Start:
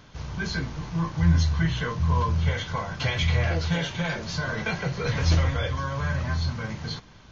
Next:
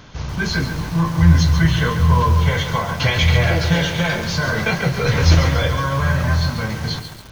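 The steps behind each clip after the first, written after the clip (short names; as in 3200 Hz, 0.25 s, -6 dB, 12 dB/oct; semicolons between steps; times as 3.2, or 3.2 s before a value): lo-fi delay 0.139 s, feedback 55%, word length 7-bit, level -8 dB; gain +8.5 dB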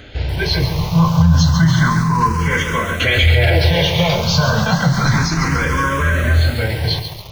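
maximiser +9 dB; endless phaser +0.31 Hz; gain -1 dB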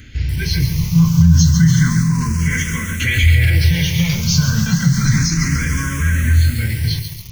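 EQ curve 230 Hz 0 dB, 670 Hz -26 dB, 2000 Hz -2 dB, 3800 Hz -9 dB, 6000 Hz +5 dB; gain +1.5 dB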